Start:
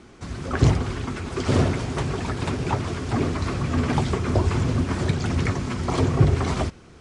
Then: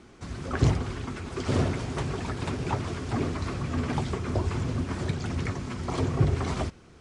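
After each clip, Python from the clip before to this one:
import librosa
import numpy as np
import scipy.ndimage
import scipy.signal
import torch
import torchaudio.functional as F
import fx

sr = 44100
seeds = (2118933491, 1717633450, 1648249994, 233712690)

y = fx.rider(x, sr, range_db=4, speed_s=2.0)
y = F.gain(torch.from_numpy(y), -6.5).numpy()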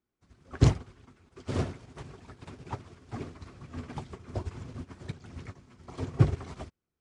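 y = fx.upward_expand(x, sr, threshold_db=-43.0, expansion=2.5)
y = F.gain(torch.from_numpy(y), 3.0).numpy()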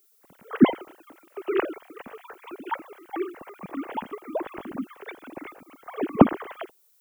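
y = fx.sine_speech(x, sr)
y = fx.dmg_noise_colour(y, sr, seeds[0], colour='violet', level_db=-68.0)
y = F.gain(torch.from_numpy(y), 5.0).numpy()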